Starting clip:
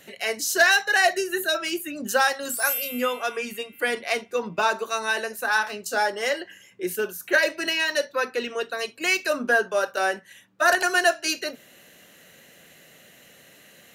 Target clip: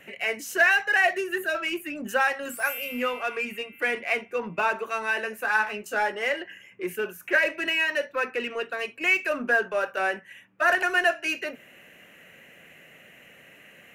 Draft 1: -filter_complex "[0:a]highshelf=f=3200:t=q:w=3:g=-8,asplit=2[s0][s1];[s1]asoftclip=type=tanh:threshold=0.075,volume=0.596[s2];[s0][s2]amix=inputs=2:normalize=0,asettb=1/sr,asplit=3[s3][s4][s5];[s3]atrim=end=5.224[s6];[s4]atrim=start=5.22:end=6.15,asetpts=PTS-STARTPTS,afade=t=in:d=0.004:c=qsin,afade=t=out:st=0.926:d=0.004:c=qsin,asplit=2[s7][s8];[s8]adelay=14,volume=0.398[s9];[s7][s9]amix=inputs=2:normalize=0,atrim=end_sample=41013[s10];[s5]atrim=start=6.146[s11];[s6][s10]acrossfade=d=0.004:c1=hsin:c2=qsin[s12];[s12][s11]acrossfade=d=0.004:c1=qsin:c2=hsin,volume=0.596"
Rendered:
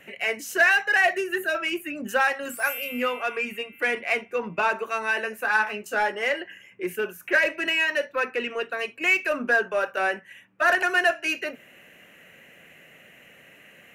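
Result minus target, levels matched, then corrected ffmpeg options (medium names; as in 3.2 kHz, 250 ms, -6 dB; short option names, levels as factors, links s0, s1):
saturation: distortion -5 dB
-filter_complex "[0:a]highshelf=f=3200:t=q:w=3:g=-8,asplit=2[s0][s1];[s1]asoftclip=type=tanh:threshold=0.0237,volume=0.596[s2];[s0][s2]amix=inputs=2:normalize=0,asettb=1/sr,asplit=3[s3][s4][s5];[s3]atrim=end=5.224[s6];[s4]atrim=start=5.22:end=6.15,asetpts=PTS-STARTPTS,afade=t=in:d=0.004:c=qsin,afade=t=out:st=0.926:d=0.004:c=qsin,asplit=2[s7][s8];[s8]adelay=14,volume=0.398[s9];[s7][s9]amix=inputs=2:normalize=0,atrim=end_sample=41013[s10];[s5]atrim=start=6.146[s11];[s6][s10]acrossfade=d=0.004:c1=hsin:c2=qsin[s12];[s12][s11]acrossfade=d=0.004:c1=qsin:c2=hsin,volume=0.596"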